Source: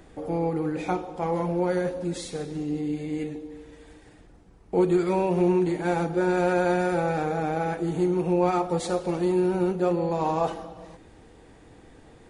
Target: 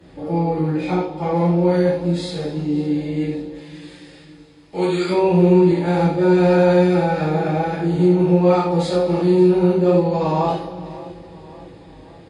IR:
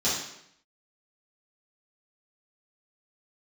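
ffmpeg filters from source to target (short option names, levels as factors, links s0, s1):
-filter_complex "[0:a]asettb=1/sr,asplit=3[s0][s1][s2];[s0]atrim=end=3.544[s3];[s1]atrim=start=3.54:end=5.09,asetpts=PTS-STARTPTS,afade=t=in:d=0.004:c=qsin,afade=t=out:st=1.546:d=0.004:c=qsin,tiltshelf=f=970:g=-9.5[s4];[s2]atrim=start=5.086[s5];[s3][s4]acrossfade=d=0.004:c1=hsin:c2=qsin[s6];[s6][s5]acrossfade=d=0.004:c1=qsin:c2=hsin,aecho=1:1:557|1114|1671|2228:0.126|0.0655|0.034|0.0177[s7];[1:a]atrim=start_sample=2205,atrim=end_sample=3528,asetrate=31311,aresample=44100[s8];[s7][s8]afir=irnorm=-1:irlink=0,volume=0.398"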